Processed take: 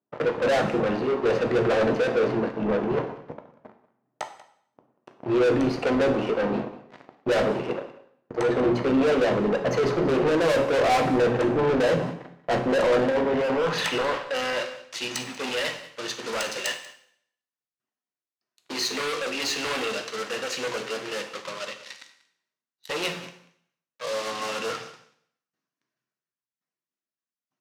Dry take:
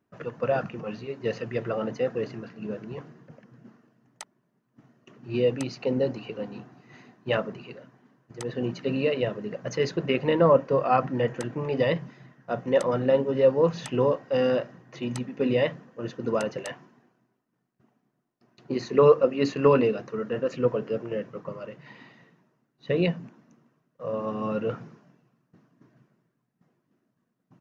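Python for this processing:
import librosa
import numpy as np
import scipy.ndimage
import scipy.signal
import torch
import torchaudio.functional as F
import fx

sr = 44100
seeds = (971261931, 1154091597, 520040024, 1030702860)

y = fx.low_shelf(x, sr, hz=400.0, db=3.5)
y = fx.hum_notches(y, sr, base_hz=60, count=7)
y = fx.leveller(y, sr, passes=5)
y = fx.filter_sweep_bandpass(y, sr, from_hz=620.0, to_hz=5600.0, start_s=12.68, end_s=14.9, q=0.77)
y = 10.0 ** (-20.5 / 20.0) * np.tanh(y / 10.0 ** (-20.5 / 20.0))
y = y + 10.0 ** (-18.5 / 20.0) * np.pad(y, (int(188 * sr / 1000.0), 0))[:len(y)]
y = fx.rev_plate(y, sr, seeds[0], rt60_s=0.65, hf_ratio=1.0, predelay_ms=0, drr_db=6.0)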